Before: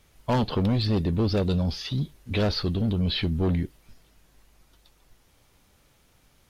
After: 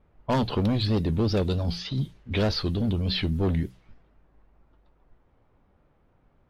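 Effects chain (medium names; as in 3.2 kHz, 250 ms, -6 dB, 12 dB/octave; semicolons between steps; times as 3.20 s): hum notches 60/120/180 Hz; vibrato 3.3 Hz 80 cents; level-controlled noise filter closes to 1.1 kHz, open at -23 dBFS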